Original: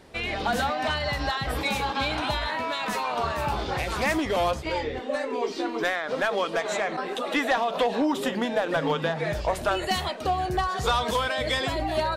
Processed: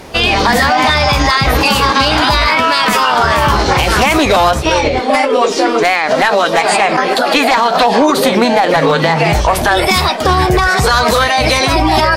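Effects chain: formant shift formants +3 st; loudness maximiser +19.5 dB; trim -1 dB

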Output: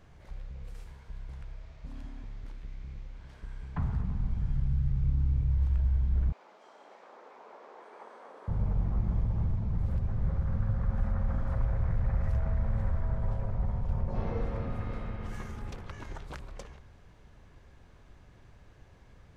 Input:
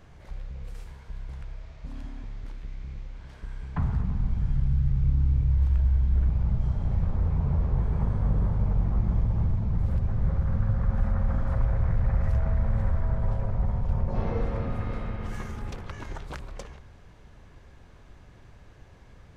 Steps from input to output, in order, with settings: 6.32–8.48 s: Bessel high-pass 580 Hz, order 8; trim -4.5 dB

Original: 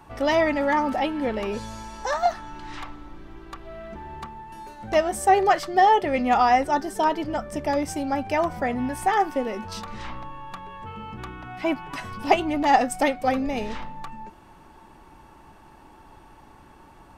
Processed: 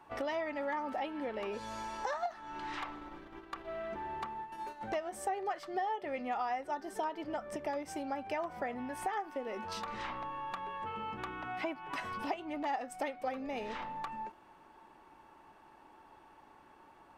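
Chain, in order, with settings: gate -40 dBFS, range -7 dB; bass shelf 66 Hz -7 dB; compression 6:1, threshold -34 dBFS, peak gain reduction 20 dB; tone controls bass -10 dB, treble -7 dB; endings held to a fixed fall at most 290 dB/s

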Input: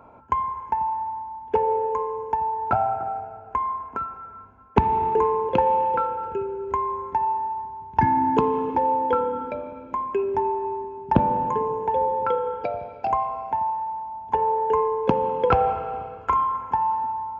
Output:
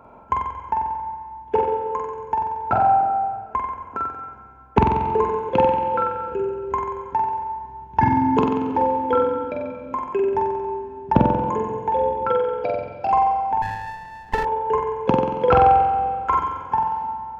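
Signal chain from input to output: flutter echo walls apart 7.9 m, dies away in 0.94 s; 13.62–14.45 s: sliding maximum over 17 samples; trim +1 dB

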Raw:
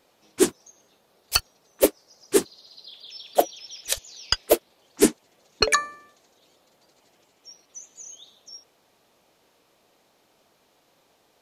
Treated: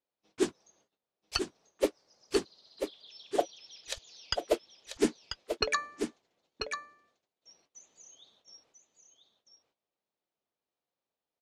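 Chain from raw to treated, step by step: gate -58 dBFS, range -21 dB; low-pass 5.8 kHz 12 dB/octave; delay 990 ms -7 dB; trim -9 dB

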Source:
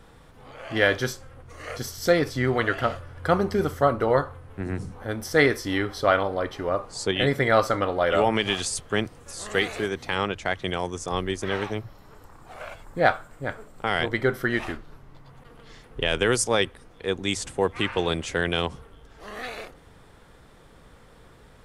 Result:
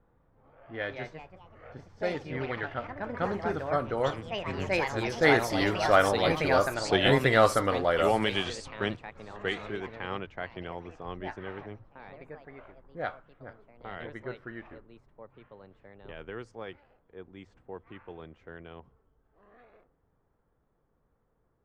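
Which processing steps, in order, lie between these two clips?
Doppler pass-by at 6.64 s, 9 m/s, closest 11 m; ever faster or slower copies 311 ms, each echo +3 st, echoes 3, each echo -6 dB; level-controlled noise filter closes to 1.2 kHz, open at -22 dBFS

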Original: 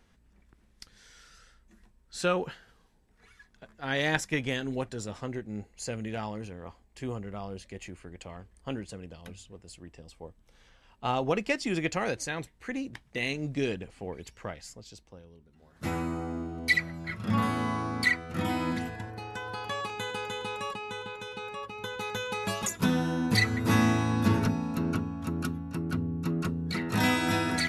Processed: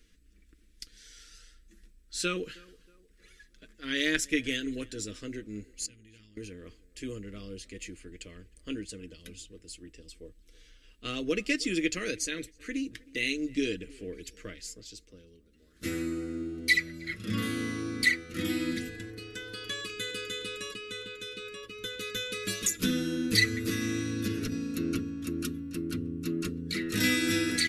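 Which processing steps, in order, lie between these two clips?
peaking EQ 790 Hz -14.5 dB 1.4 oct; comb 6.5 ms, depth 46%; 5.86–6.37 s: amplifier tone stack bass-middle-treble 6-0-2; 23.57–24.52 s: compression, threshold -28 dBFS, peak gain reduction 7.5 dB; static phaser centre 350 Hz, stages 4; tape echo 315 ms, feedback 44%, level -22 dB, low-pass 1.7 kHz; trim +4.5 dB

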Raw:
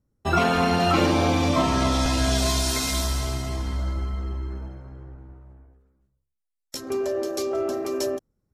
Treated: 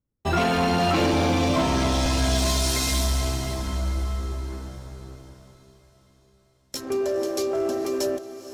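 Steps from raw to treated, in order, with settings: dynamic bell 1.3 kHz, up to -5 dB, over -43 dBFS, Q 3.7; waveshaping leveller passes 2; on a send: echo that smears into a reverb 495 ms, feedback 51%, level -13.5 dB; on the sum: trim -6 dB

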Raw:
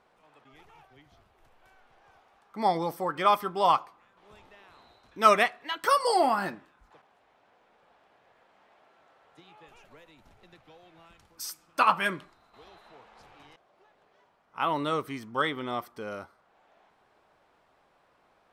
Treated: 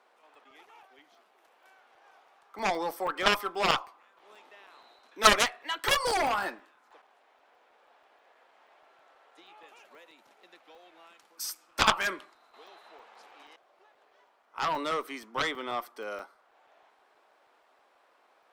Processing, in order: Bessel high-pass 420 Hz, order 8; Chebyshev shaper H 4 -15 dB, 6 -32 dB, 7 -9 dB, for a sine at -6.5 dBFS; crackling interface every 0.16 s, samples 128, zero, from 0.35 s; trim -1.5 dB

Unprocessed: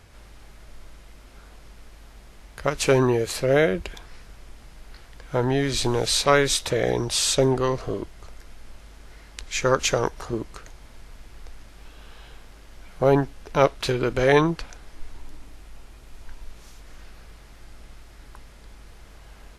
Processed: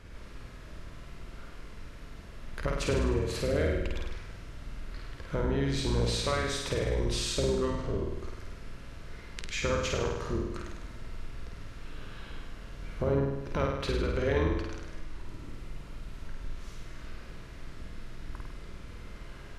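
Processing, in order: octave divider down 2 oct, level +2 dB; compression 3:1, threshold -31 dBFS, peak gain reduction 15 dB; low-pass 3.3 kHz 6 dB/octave; peaking EQ 770 Hz -10 dB 0.29 oct; on a send: flutter echo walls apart 8.7 m, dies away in 1 s

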